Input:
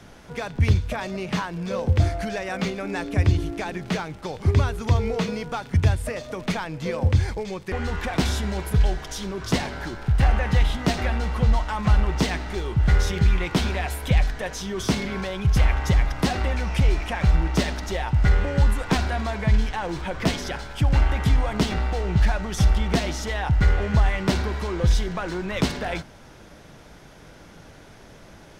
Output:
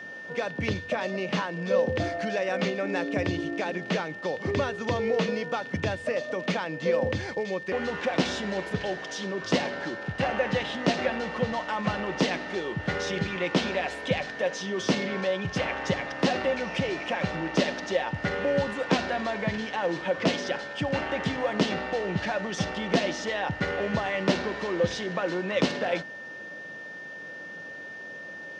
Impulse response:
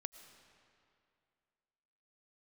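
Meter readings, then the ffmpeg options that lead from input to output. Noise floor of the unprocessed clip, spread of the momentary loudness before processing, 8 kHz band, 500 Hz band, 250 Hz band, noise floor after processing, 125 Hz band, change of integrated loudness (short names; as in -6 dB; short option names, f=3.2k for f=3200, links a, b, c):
-47 dBFS, 8 LU, -5.5 dB, +3.0 dB, -2.5 dB, -41 dBFS, -12.5 dB, -4.5 dB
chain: -af "highpass=f=130:w=0.5412,highpass=f=130:w=1.3066,equalizer=f=130:t=q:w=4:g=-8,equalizer=f=300:t=q:w=4:g=3,equalizer=f=540:t=q:w=4:g=10,equalizer=f=2.8k:t=q:w=4:g=4,lowpass=f=6.5k:w=0.5412,lowpass=f=6.5k:w=1.3066,aeval=exprs='val(0)+0.0158*sin(2*PI*1800*n/s)':c=same,volume=-2.5dB"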